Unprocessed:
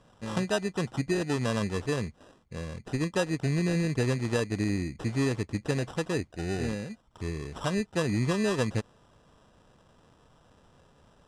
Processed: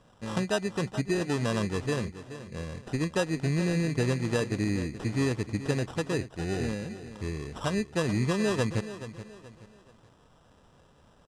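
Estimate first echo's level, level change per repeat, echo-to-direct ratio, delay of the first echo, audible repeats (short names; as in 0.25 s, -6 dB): -13.0 dB, -9.0 dB, -12.5 dB, 0.427 s, 3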